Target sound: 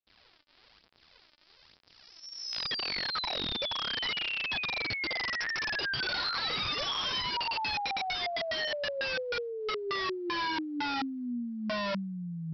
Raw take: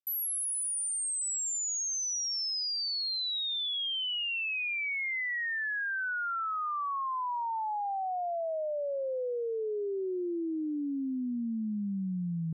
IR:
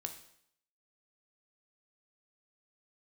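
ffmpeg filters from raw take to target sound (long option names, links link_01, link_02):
-af "adynamicequalizer=threshold=0.00355:dfrequency=1200:dqfactor=1.5:tfrequency=1200:tqfactor=1.5:attack=5:release=100:ratio=0.375:range=4:mode=boostabove:tftype=bell,aphaser=in_gain=1:out_gain=1:delay=3.4:decay=0.52:speed=1.1:type=sinusoidal,aresample=11025,aeval=exprs='(mod(23.7*val(0)+1,2)-1)/23.7':channel_layout=same,aresample=44100,volume=-1dB"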